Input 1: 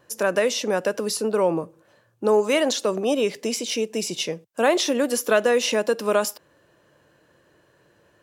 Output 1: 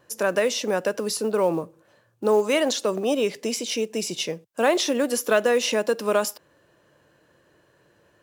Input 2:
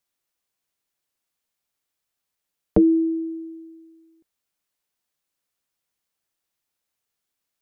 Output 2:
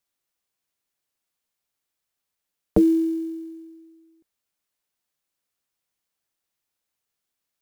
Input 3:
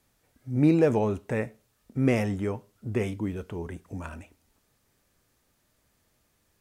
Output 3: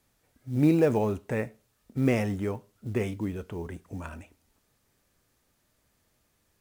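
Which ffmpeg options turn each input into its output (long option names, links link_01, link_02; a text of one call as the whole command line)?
ffmpeg -i in.wav -af "acrusher=bits=8:mode=log:mix=0:aa=0.000001,volume=-1dB" out.wav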